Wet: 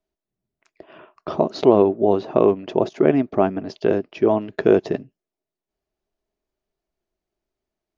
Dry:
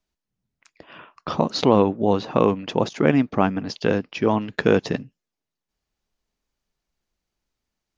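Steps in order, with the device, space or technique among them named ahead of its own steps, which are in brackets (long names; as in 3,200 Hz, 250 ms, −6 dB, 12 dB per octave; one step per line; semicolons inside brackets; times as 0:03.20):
inside a helmet (high-shelf EQ 4,200 Hz −7 dB; hollow resonant body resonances 380/630 Hz, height 13 dB, ringing for 35 ms)
level −4.5 dB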